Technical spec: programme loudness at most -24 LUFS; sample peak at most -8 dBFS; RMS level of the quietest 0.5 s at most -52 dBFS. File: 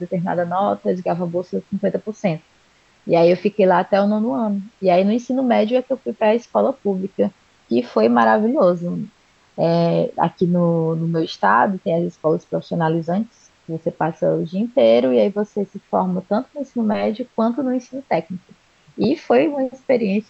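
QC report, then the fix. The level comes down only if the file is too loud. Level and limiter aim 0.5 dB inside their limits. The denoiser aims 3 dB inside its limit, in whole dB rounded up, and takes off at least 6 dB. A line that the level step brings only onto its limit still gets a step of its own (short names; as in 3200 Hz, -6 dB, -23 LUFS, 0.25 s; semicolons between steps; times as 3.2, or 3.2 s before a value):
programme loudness -19.5 LUFS: fail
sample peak -4.0 dBFS: fail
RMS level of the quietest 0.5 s -56 dBFS: OK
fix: gain -5 dB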